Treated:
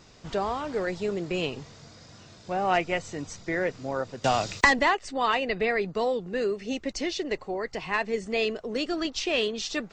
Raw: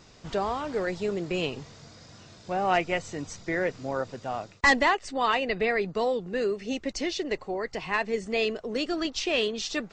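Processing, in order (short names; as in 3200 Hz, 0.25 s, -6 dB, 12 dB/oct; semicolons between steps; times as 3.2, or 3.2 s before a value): 4.24–4.79 three-band squash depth 100%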